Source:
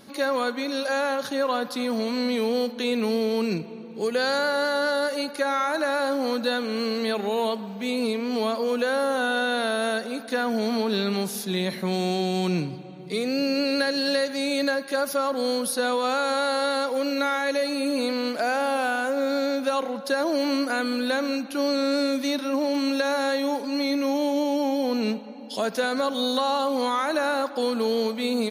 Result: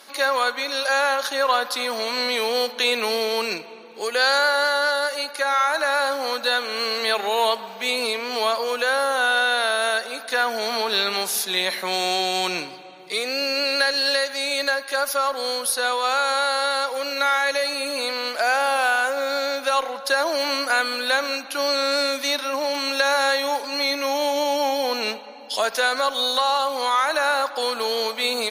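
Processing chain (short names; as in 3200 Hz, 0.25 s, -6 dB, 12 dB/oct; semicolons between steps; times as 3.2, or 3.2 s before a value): HPF 770 Hz 12 dB/oct; added harmonics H 2 -29 dB, 7 -40 dB, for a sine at -14.5 dBFS; vocal rider 2 s; gain +7.5 dB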